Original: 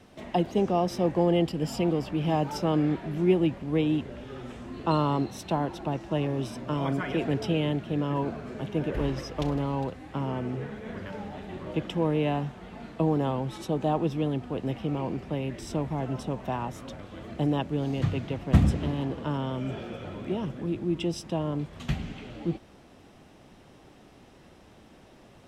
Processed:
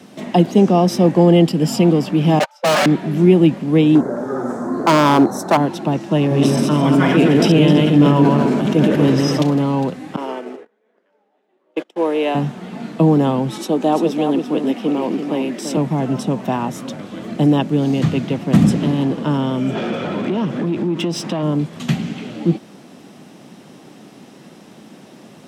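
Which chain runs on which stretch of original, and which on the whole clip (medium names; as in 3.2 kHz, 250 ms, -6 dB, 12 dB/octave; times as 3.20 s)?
2.39–2.86 s: gate -25 dBFS, range -56 dB + brick-wall FIR high-pass 520 Hz + overdrive pedal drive 41 dB, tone 3.8 kHz, clips at -18 dBFS
3.95–5.57 s: FFT filter 190 Hz 0 dB, 280 Hz +5 dB, 650 Hz +11 dB, 1.5 kHz +9 dB, 2.8 kHz -24 dB, 3.9 kHz -11 dB, 6.4 kHz 0 dB + hard clipper -18.5 dBFS
6.18–9.42 s: backward echo that repeats 129 ms, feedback 45%, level -2.5 dB + decay stretcher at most 22 dB/s
10.16–12.35 s: gate -32 dBFS, range -32 dB + high-pass 360 Hz 24 dB/octave + tape noise reduction on one side only decoder only
13.58–15.77 s: high-pass 220 Hz 24 dB/octave + delay 340 ms -7 dB
19.75–21.43 s: bass shelf 120 Hz +10 dB + compression 4:1, threshold -30 dBFS + overdrive pedal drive 17 dB, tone 2.2 kHz, clips at -23 dBFS
whole clip: high-pass 180 Hz 24 dB/octave; tone controls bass +11 dB, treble +5 dB; loudness maximiser +10.5 dB; trim -1 dB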